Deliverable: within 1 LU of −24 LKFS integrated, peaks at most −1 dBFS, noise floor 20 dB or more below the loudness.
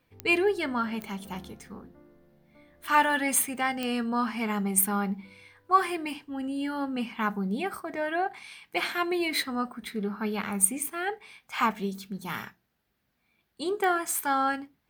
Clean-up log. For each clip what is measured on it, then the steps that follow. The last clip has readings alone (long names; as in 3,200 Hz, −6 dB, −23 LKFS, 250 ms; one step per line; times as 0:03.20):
number of clicks 4; integrated loudness −28.5 LKFS; sample peak −9.0 dBFS; target loudness −24.0 LKFS
→ click removal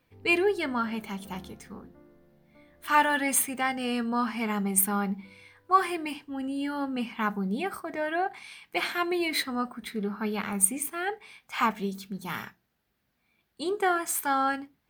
number of clicks 0; integrated loudness −28.5 LKFS; sample peak −9.0 dBFS; target loudness −24.0 LKFS
→ level +4.5 dB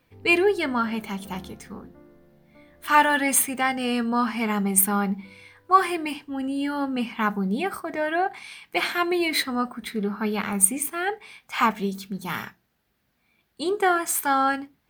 integrated loudness −24.0 LKFS; sample peak −4.5 dBFS; background noise floor −71 dBFS